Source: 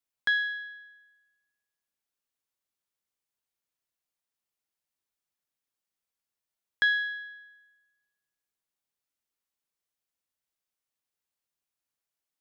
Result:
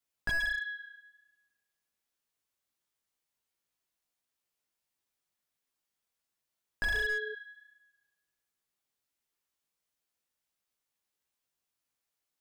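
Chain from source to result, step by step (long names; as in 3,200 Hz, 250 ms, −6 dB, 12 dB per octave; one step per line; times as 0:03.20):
chorus effect 1.4 Hz, delay 15.5 ms, depth 4.2 ms
0:06.93–0:07.33: steady tone 430 Hz −44 dBFS
slew-rate limiting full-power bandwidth 30 Hz
level +5.5 dB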